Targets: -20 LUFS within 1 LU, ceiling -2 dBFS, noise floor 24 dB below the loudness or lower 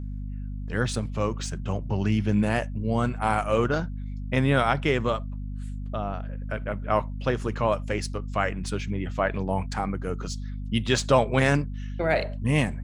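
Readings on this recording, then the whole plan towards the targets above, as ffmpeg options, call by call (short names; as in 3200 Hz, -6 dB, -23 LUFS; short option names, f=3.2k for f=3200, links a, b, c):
hum 50 Hz; harmonics up to 250 Hz; hum level -30 dBFS; loudness -27.0 LUFS; peak -6.0 dBFS; loudness target -20.0 LUFS
-> -af "bandreject=f=50:t=h:w=6,bandreject=f=100:t=h:w=6,bandreject=f=150:t=h:w=6,bandreject=f=200:t=h:w=6,bandreject=f=250:t=h:w=6"
-af "volume=7dB,alimiter=limit=-2dB:level=0:latency=1"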